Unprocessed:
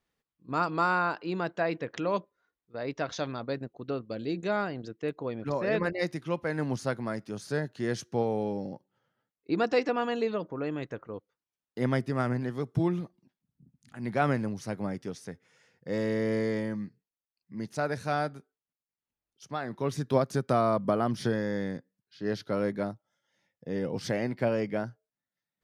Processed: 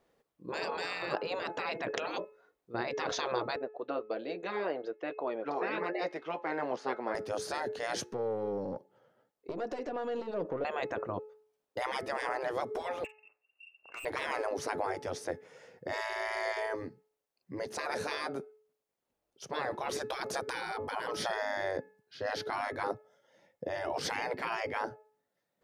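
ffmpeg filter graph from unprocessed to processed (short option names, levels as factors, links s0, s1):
-filter_complex "[0:a]asettb=1/sr,asplit=3[s0][s1][s2];[s0]atrim=end=3.564[s3];[s1]atrim=start=3.56:end=7.15,asetpts=PTS-STARTPTS,afade=t=in:d=0.004:c=qsin,afade=t=out:st=3.586:d=0.004:c=qsin,flanger=delay=4.7:depth=1.8:regen=-63:speed=1.2:shape=sinusoidal,highpass=560,lowpass=3500[s4];[s2]atrim=start=7.146[s5];[s3][s4]acrossfade=d=0.004:c1=hsin:c2=qsin[s6];[s6][s5]acrossfade=d=0.004:c1=qsin:c2=hsin,asettb=1/sr,asplit=3[s7][s8][s9];[s7]atrim=end=8.124[s10];[s8]atrim=start=8.12:end=10.65,asetpts=PTS-STARTPTS,afade=t=in:d=0.004:c=qsin,afade=t=out:st=2.526:d=0.004:c=qsin,acompressor=threshold=0.0126:ratio=16:attack=3.2:release=140:knee=1:detection=peak,aeval=exprs='(tanh(112*val(0)+0.45)-tanh(0.45))/112':c=same[s11];[s9]atrim=start=10.646[s12];[s10][s11]acrossfade=d=0.004:c1=hsin:c2=qsin[s13];[s13][s12]acrossfade=d=0.004:c1=qsin:c2=hsin,asettb=1/sr,asplit=3[s14][s15][s16];[s14]atrim=end=13.044[s17];[s15]atrim=start=13.04:end=14.05,asetpts=PTS-STARTPTS,afade=t=in:d=0.004:c=qsin,afade=t=out:st=1.006:d=0.004:c=qsin,lowpass=f=2500:t=q:w=0.5098,lowpass=f=2500:t=q:w=0.6013,lowpass=f=2500:t=q:w=0.9,lowpass=f=2500:t=q:w=2.563,afreqshift=-2900,aeval=exprs='(tanh(158*val(0)+0.05)-tanh(0.05))/158':c=same,asplit=2[s18][s19];[s19]adelay=48,volume=0.211[s20];[s18][s20]amix=inputs=2:normalize=0,atrim=end_sample=44541[s21];[s16]atrim=start=14.046[s22];[s17][s21]acrossfade=d=0.004:c1=hsin:c2=qsin[s23];[s23][s22]acrossfade=d=0.004:c1=qsin:c2=hsin,bandreject=f=429:t=h:w=4,bandreject=f=858:t=h:w=4,bandreject=f=1287:t=h:w=4,bandreject=f=1716:t=h:w=4,bandreject=f=2145:t=h:w=4,bandreject=f=2574:t=h:w=4,afftfilt=real='re*lt(hypot(re,im),0.0447)':imag='im*lt(hypot(re,im),0.0447)':win_size=1024:overlap=0.75,equalizer=f=530:w=0.72:g=14.5,volume=1.41"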